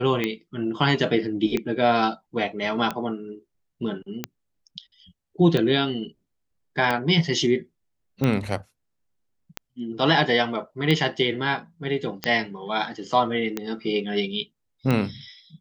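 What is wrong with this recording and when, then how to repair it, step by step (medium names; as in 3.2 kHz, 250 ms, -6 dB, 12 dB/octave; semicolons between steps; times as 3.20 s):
tick 45 rpm -11 dBFS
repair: de-click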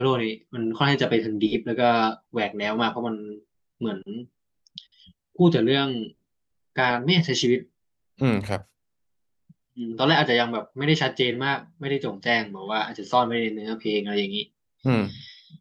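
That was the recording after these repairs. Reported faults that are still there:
nothing left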